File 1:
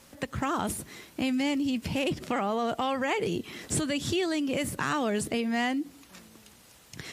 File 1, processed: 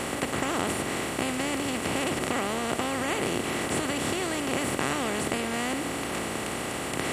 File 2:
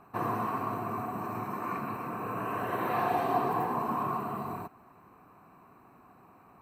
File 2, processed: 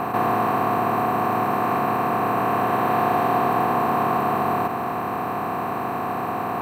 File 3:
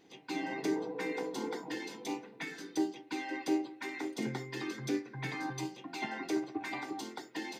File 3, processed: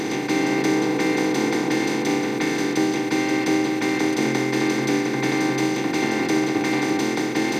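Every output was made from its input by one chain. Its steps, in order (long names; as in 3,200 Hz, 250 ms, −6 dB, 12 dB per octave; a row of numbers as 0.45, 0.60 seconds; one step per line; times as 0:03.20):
compressor on every frequency bin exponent 0.2
normalise the peak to −9 dBFS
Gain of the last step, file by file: −8.0, +3.0, +7.0 decibels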